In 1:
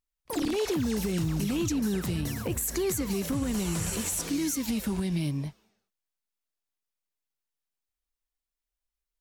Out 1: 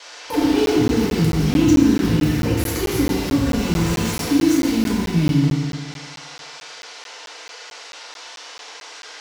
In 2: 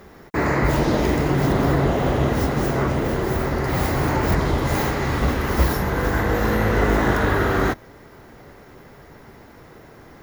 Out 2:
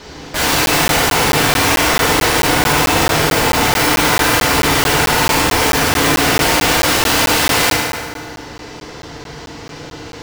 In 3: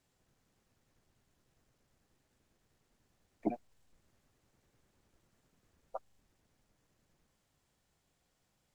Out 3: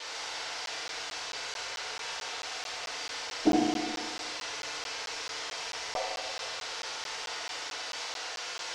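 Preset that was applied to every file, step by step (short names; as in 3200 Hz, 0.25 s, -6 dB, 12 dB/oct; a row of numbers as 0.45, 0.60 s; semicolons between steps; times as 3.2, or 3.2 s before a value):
median filter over 5 samples; band noise 440–5900 Hz -49 dBFS; wow and flutter 42 cents; dynamic EQ 430 Hz, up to -3 dB, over -36 dBFS, Q 2.2; wrapped overs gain 20 dB; FDN reverb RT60 1.9 s, low-frequency decay 0.75×, high-frequency decay 0.65×, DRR -6 dB; crackling interface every 0.22 s, samples 512, zero, from 0.66; gain +4.5 dB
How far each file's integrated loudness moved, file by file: +11.0, +8.5, +8.5 LU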